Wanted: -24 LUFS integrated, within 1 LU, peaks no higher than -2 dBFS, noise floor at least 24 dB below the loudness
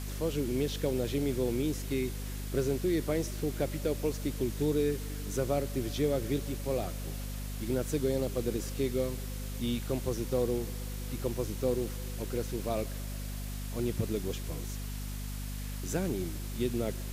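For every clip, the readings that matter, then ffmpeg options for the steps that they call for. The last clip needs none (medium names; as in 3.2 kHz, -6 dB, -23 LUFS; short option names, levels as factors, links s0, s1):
hum 50 Hz; highest harmonic 250 Hz; hum level -35 dBFS; noise floor -38 dBFS; noise floor target -58 dBFS; loudness -33.5 LUFS; peak level -17.0 dBFS; loudness target -24.0 LUFS
-> -af "bandreject=f=50:t=h:w=6,bandreject=f=100:t=h:w=6,bandreject=f=150:t=h:w=6,bandreject=f=200:t=h:w=6,bandreject=f=250:t=h:w=6"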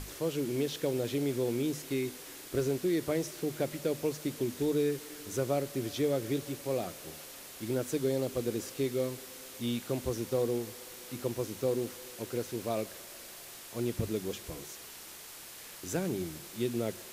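hum not found; noise floor -48 dBFS; noise floor target -58 dBFS
-> -af "afftdn=nr=10:nf=-48"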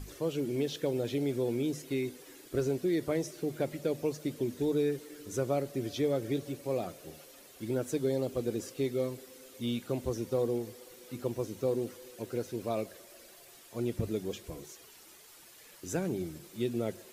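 noise floor -55 dBFS; noise floor target -58 dBFS
-> -af "afftdn=nr=6:nf=-55"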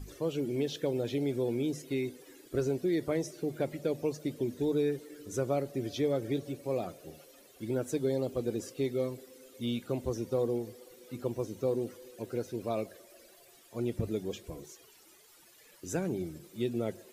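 noise floor -59 dBFS; loudness -34.0 LUFS; peak level -18.0 dBFS; loudness target -24.0 LUFS
-> -af "volume=3.16"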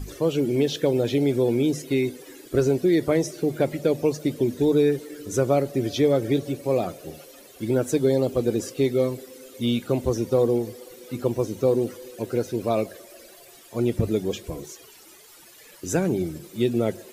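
loudness -24.0 LUFS; peak level -8.0 dBFS; noise floor -49 dBFS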